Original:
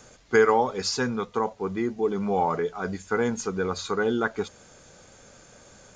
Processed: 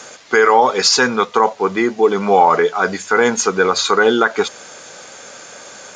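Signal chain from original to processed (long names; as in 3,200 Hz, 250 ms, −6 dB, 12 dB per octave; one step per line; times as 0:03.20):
meter weighting curve A
boost into a limiter +17.5 dB
level −1 dB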